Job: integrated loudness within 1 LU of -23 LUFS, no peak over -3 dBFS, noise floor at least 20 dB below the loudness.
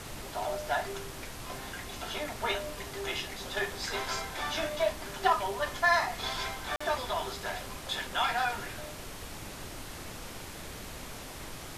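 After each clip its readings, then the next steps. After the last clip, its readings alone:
dropouts 1; longest dropout 45 ms; noise floor -44 dBFS; noise floor target -54 dBFS; loudness -33.5 LUFS; peak level -12.5 dBFS; loudness target -23.0 LUFS
-> interpolate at 6.76 s, 45 ms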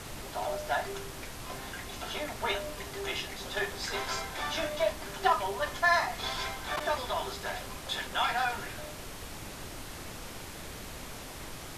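dropouts 0; noise floor -43 dBFS; noise floor target -54 dBFS
-> noise print and reduce 11 dB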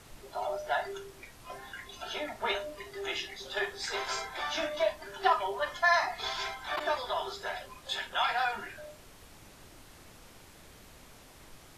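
noise floor -54 dBFS; loudness -32.5 LUFS; peak level -13.0 dBFS; loudness target -23.0 LUFS
-> trim +9.5 dB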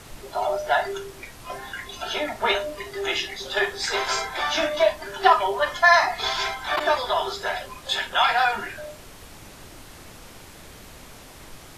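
loudness -23.0 LUFS; peak level -3.5 dBFS; noise floor -45 dBFS

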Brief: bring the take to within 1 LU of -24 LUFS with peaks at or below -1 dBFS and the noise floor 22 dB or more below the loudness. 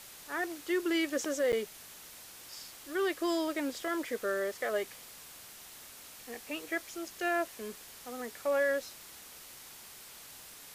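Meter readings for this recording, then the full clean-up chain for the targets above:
dropouts 1; longest dropout 8.7 ms; noise floor -51 dBFS; noise floor target -56 dBFS; loudness -34.0 LUFS; peak level -19.5 dBFS; loudness target -24.0 LUFS
-> interpolate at 1.52 s, 8.7 ms; noise reduction 6 dB, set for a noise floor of -51 dBFS; trim +10 dB

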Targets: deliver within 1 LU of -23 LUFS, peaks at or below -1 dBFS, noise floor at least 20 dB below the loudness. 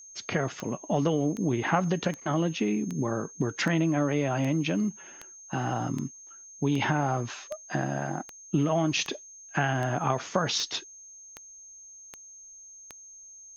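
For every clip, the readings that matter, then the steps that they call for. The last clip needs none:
clicks found 17; steady tone 6.4 kHz; tone level -46 dBFS; loudness -29.0 LUFS; peak level -8.0 dBFS; loudness target -23.0 LUFS
-> de-click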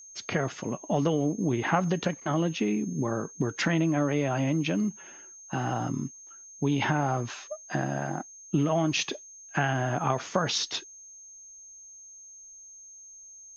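clicks found 0; steady tone 6.4 kHz; tone level -46 dBFS
-> band-stop 6.4 kHz, Q 30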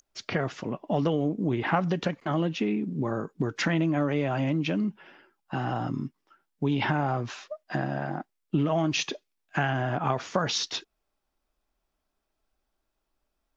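steady tone not found; loudness -29.0 LUFS; peak level -8.0 dBFS; loudness target -23.0 LUFS
-> trim +6 dB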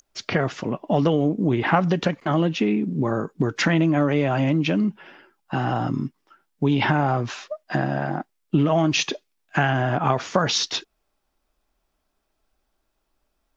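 loudness -23.0 LUFS; peak level -2.0 dBFS; noise floor -75 dBFS

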